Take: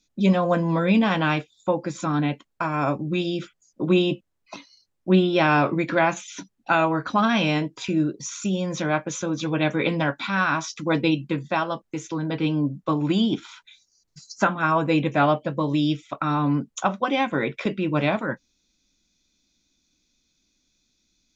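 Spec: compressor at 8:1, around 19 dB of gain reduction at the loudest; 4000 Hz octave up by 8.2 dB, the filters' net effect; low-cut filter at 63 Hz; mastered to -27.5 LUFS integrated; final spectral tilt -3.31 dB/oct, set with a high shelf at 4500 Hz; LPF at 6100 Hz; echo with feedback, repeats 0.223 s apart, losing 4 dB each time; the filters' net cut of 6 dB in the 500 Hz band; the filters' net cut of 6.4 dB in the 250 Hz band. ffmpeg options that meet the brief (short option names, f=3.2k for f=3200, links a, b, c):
-af "highpass=63,lowpass=6.1k,equalizer=f=250:t=o:g=-7.5,equalizer=f=500:t=o:g=-6,equalizer=f=4k:t=o:g=7,highshelf=f=4.5k:g=8.5,acompressor=threshold=-37dB:ratio=8,aecho=1:1:223|446|669|892|1115|1338|1561|1784|2007:0.631|0.398|0.25|0.158|0.0994|0.0626|0.0394|0.0249|0.0157,volume=10.5dB"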